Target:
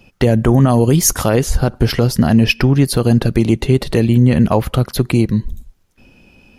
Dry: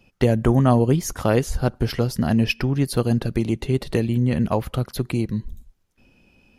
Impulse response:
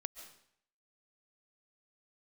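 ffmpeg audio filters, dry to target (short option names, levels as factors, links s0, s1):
-filter_complex "[0:a]asettb=1/sr,asplit=3[s0][s1][s2];[s0]atrim=end=0.684[s3];[s1]atrim=start=0.68:end=1.29,asetpts=PTS-STARTPTS,afade=t=in:d=0.004:c=qsin,afade=t=out:st=0.606:d=0.004:c=qsin,highshelf=f=4200:g=9.5[s4];[s2]atrim=start=1.286[s5];[s3][s4]acrossfade=d=0.004:c1=hsin:c2=qsin[s6];[s6][s5]acrossfade=d=0.004:c1=qsin:c2=hsin,alimiter=level_in=3.35:limit=0.891:release=50:level=0:latency=1,volume=0.891"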